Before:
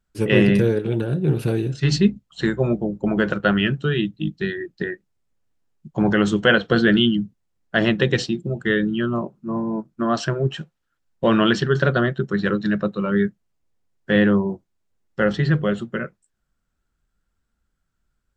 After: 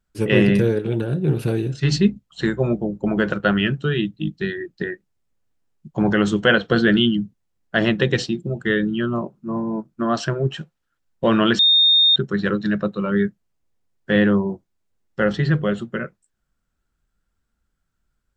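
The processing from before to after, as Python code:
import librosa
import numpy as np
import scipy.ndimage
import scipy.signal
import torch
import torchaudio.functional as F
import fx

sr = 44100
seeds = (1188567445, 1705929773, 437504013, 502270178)

y = fx.edit(x, sr, fx.bleep(start_s=11.59, length_s=0.57, hz=3670.0, db=-11.0), tone=tone)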